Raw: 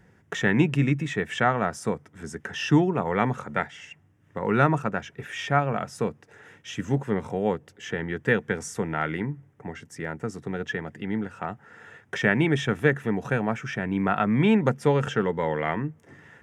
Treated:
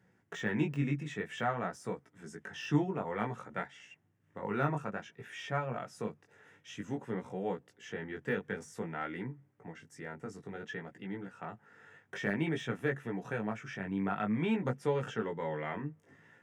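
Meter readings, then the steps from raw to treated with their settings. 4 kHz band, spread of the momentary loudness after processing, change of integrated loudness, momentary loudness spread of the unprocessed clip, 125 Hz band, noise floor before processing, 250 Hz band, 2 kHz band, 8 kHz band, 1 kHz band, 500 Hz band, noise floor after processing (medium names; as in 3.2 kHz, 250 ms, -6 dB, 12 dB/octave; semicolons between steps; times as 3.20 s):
-11.5 dB, 14 LU, -11.0 dB, 14 LU, -11.5 dB, -60 dBFS, -10.5 dB, -11.5 dB, -12.5 dB, -11.0 dB, -10.5 dB, -71 dBFS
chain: high-pass 100 Hz; de-esser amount 85%; chorus 0.54 Hz, delay 16 ms, depth 4.7 ms; trim -7.5 dB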